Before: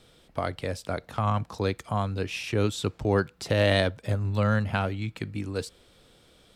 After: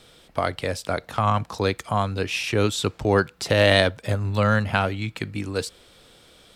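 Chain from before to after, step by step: bass shelf 470 Hz -5.5 dB; trim +7.5 dB

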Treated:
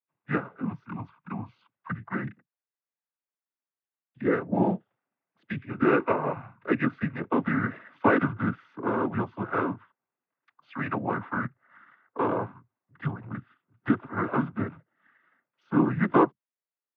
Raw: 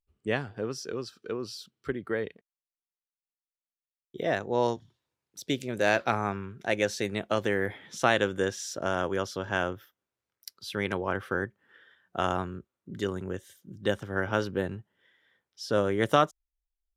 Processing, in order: dynamic bell 380 Hz, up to +5 dB, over -37 dBFS, Q 0.98; mistuned SSB -260 Hz 470–2300 Hz; noise-vocoded speech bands 16; trim +2.5 dB

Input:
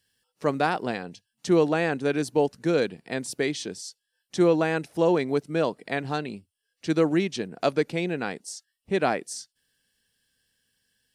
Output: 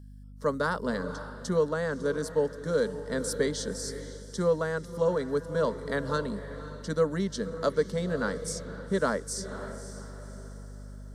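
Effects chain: static phaser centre 500 Hz, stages 8; echo that smears into a reverb 543 ms, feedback 42%, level -13 dB; hum 50 Hz, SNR 16 dB; gain riding within 3 dB 0.5 s

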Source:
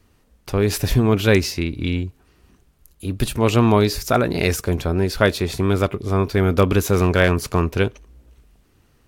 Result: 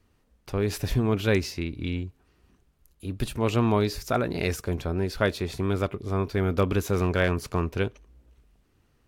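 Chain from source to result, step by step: treble shelf 5.9 kHz -4.5 dB; trim -7.5 dB

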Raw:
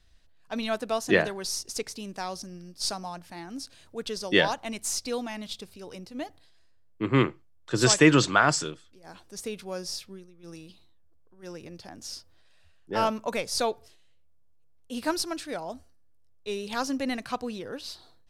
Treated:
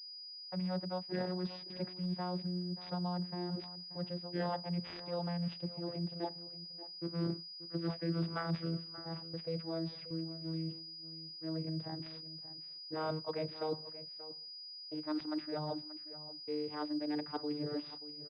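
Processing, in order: vocoder on a note that slides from F#3, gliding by -4 st; gate -53 dBFS, range -24 dB; reverse; compression 6:1, threshold -41 dBFS, peak gain reduction 26.5 dB; reverse; delay 582 ms -15 dB; class-D stage that switches slowly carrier 4.9 kHz; trim +5.5 dB

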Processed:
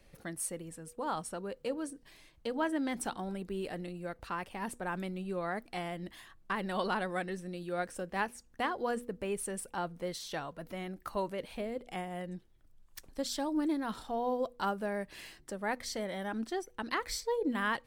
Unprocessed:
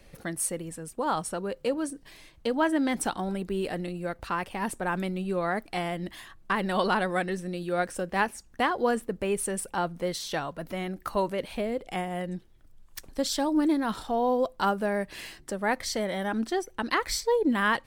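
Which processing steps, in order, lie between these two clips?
de-hum 241.9 Hz, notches 2; trim -7.5 dB

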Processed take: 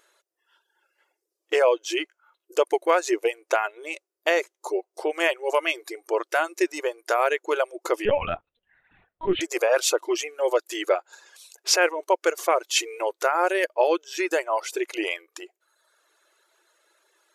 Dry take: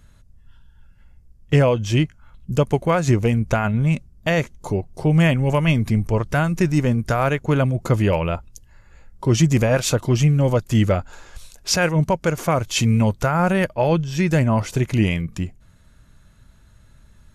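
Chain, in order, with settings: brick-wall FIR high-pass 320 Hz; 8.05–9.41 s: LPC vocoder at 8 kHz pitch kept; reverb removal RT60 0.91 s

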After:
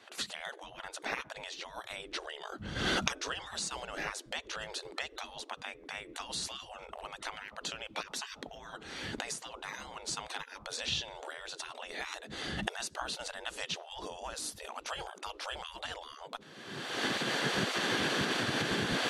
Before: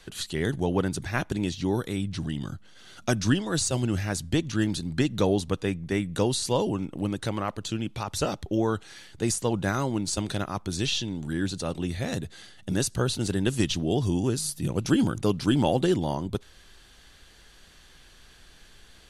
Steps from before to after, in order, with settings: recorder AGC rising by 40 dB/s; RIAA curve playback; spectral gate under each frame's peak -30 dB weak

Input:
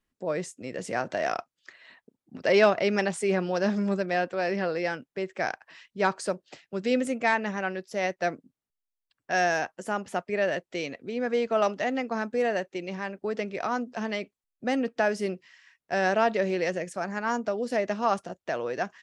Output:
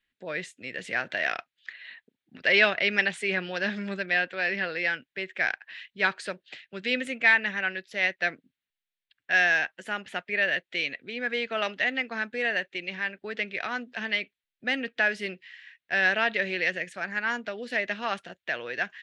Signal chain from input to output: high-order bell 2.5 kHz +15.5 dB; trim -7 dB

